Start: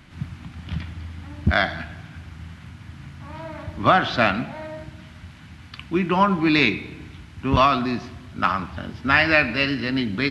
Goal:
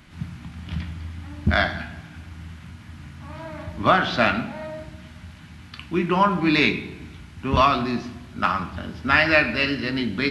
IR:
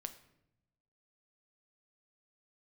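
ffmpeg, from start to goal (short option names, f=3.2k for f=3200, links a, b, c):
-filter_complex "[0:a]crystalizer=i=0.5:c=0[a];[1:a]atrim=start_sample=2205,asetrate=61740,aresample=44100[b];[a][b]afir=irnorm=-1:irlink=0,volume=5.5dB"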